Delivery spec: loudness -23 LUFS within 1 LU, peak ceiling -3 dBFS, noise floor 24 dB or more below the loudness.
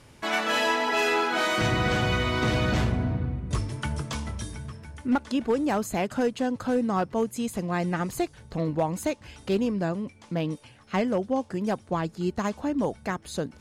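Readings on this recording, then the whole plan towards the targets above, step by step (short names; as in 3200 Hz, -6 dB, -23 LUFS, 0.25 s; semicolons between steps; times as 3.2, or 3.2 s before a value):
clipped 0.4%; flat tops at -17.0 dBFS; loudness -27.5 LUFS; peak -17.0 dBFS; loudness target -23.0 LUFS
-> clip repair -17 dBFS; gain +4.5 dB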